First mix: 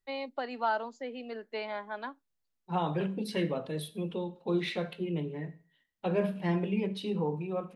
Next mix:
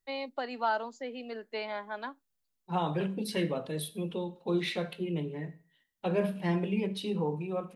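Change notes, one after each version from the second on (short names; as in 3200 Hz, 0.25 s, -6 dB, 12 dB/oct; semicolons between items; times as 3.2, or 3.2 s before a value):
master: add high shelf 6100 Hz +8.5 dB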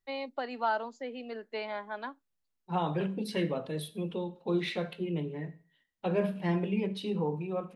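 master: add high shelf 6100 Hz -8.5 dB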